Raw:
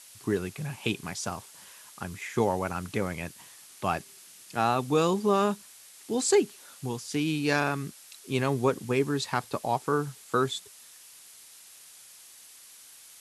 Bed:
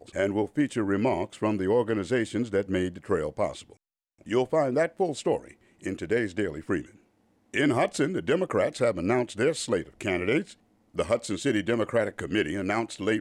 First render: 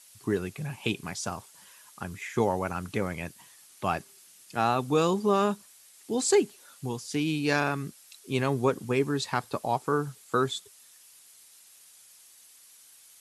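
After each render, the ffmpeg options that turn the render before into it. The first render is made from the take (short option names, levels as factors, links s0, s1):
-af "afftdn=nr=6:nf=-52"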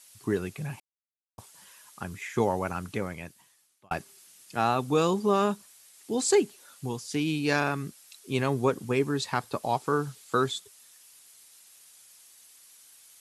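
-filter_complex "[0:a]asettb=1/sr,asplit=3[s0][s1][s2];[s0]atrim=end=9.634[s3];[s1]atrim=start=9.63:end=10.52,asetpts=PTS-STARTPTS,afade=t=in:d=0.004:c=qsin,afade=t=out:st=0.886:d=0.004:c=qsin,equalizer=f=4000:w=0.81:g=4[s4];[s2]atrim=start=10.516[s5];[s3][s4]acrossfade=d=0.004:c1=hsin:c2=qsin[s6];[s6][s5]acrossfade=d=0.004:c1=qsin:c2=hsin,asplit=4[s7][s8][s9][s10];[s7]atrim=end=0.8,asetpts=PTS-STARTPTS,afade=t=out:st=0.796:d=0.004:c=hsin[s11];[s8]atrim=start=0.8:end=1.38,asetpts=PTS-STARTPTS,volume=0[s12];[s9]atrim=start=1.38:end=3.91,asetpts=PTS-STARTPTS,afade=t=in:d=0.004:c=hsin,afade=t=out:st=1.36:d=1.17[s13];[s10]atrim=start=3.91,asetpts=PTS-STARTPTS,afade=t=in:d=0.004:c=hsin[s14];[s11][s12][s13][s14]concat=n=4:v=0:a=1"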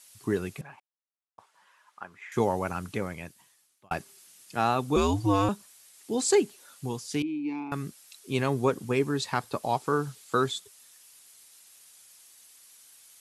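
-filter_complex "[0:a]asettb=1/sr,asplit=3[s0][s1][s2];[s0]atrim=end=0.614[s3];[s1]atrim=start=0.61:end=2.32,asetpts=PTS-STARTPTS,afade=t=in:d=0.004:c=qsin,afade=t=out:st=1.706:d=0.004:c=qsin,bandpass=f=1100:t=q:w=1.2[s4];[s2]atrim=start=2.316[s5];[s3][s4]acrossfade=d=0.004:c1=hsin:c2=qsin[s6];[s6][s5]acrossfade=d=0.004:c1=qsin:c2=hsin,asettb=1/sr,asplit=3[s7][s8][s9];[s7]atrim=end=4.964[s10];[s8]atrim=start=4.96:end=5.49,asetpts=PTS-STARTPTS,afade=t=in:d=0.004:c=qsin,afade=t=out:st=0.526:d=0.004:c=qsin,afreqshift=-98[s11];[s9]atrim=start=5.486[s12];[s10][s11]acrossfade=d=0.004:c1=hsin:c2=qsin[s13];[s13][s12]acrossfade=d=0.004:c1=qsin:c2=hsin,asettb=1/sr,asplit=3[s14][s15][s16];[s14]atrim=end=7.224[s17];[s15]atrim=start=7.22:end=7.72,asetpts=PTS-STARTPTS,afade=t=in:d=0.004:c=qsin,afade=t=out:st=0.496:d=0.004:c=qsin,asplit=3[s18][s19][s20];[s18]bandpass=f=300:t=q:w=8,volume=1[s21];[s19]bandpass=f=870:t=q:w=8,volume=0.501[s22];[s20]bandpass=f=2240:t=q:w=8,volume=0.355[s23];[s21][s22][s23]amix=inputs=3:normalize=0[s24];[s16]atrim=start=7.716[s25];[s17][s24]acrossfade=d=0.004:c1=hsin:c2=qsin[s26];[s26][s25]acrossfade=d=0.004:c1=qsin:c2=hsin"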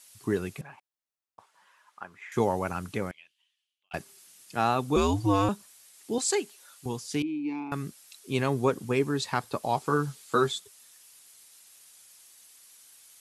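-filter_complex "[0:a]asettb=1/sr,asplit=3[s0][s1][s2];[s0]atrim=end=3.114[s3];[s1]atrim=start=3.11:end=3.94,asetpts=PTS-STARTPTS,afade=t=in:d=0.004:c=qsin,afade=t=out:st=0.826:d=0.004:c=qsin,bandpass=f=3000:t=q:w=6.2[s4];[s2]atrim=start=3.936[s5];[s3][s4]acrossfade=d=0.004:c1=hsin:c2=qsin[s6];[s6][s5]acrossfade=d=0.004:c1=qsin:c2=hsin,asettb=1/sr,asplit=3[s7][s8][s9];[s7]atrim=end=6.184[s10];[s8]atrim=start=6.18:end=6.86,asetpts=PTS-STARTPTS,afade=t=in:d=0.004:c=qsin,afade=t=out:st=0.676:d=0.004:c=qsin,highpass=f=770:p=1[s11];[s9]atrim=start=6.856[s12];[s10][s11]acrossfade=d=0.004:c1=hsin:c2=qsin[s13];[s13][s12]acrossfade=d=0.004:c1=qsin:c2=hsin,asettb=1/sr,asplit=3[s14][s15][s16];[s14]atrim=end=9.764[s17];[s15]atrim=start=9.76:end=10.55,asetpts=PTS-STARTPTS,afade=t=in:d=0.004:c=qsin,afade=t=out:st=0.786:d=0.004:c=qsin,asplit=2[s18][s19];[s19]adelay=13,volume=0.501[s20];[s18][s20]amix=inputs=2:normalize=0,atrim=end_sample=34839[s21];[s16]atrim=start=10.546[s22];[s17][s21]acrossfade=d=0.004:c1=hsin:c2=qsin[s23];[s23][s22]acrossfade=d=0.004:c1=qsin:c2=hsin"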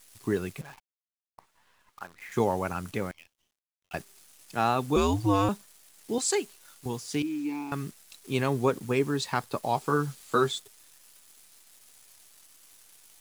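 -af "acrusher=bits=9:dc=4:mix=0:aa=0.000001"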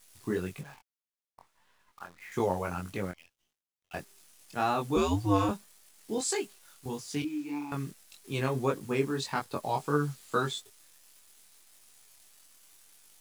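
-af "flanger=delay=20:depth=3.4:speed=1.7"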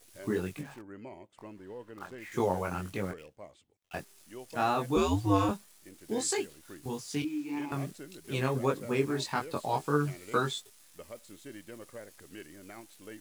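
-filter_complex "[1:a]volume=0.0891[s0];[0:a][s0]amix=inputs=2:normalize=0"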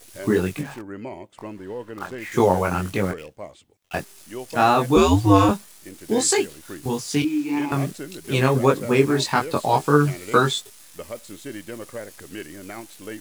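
-af "volume=3.76,alimiter=limit=0.794:level=0:latency=1"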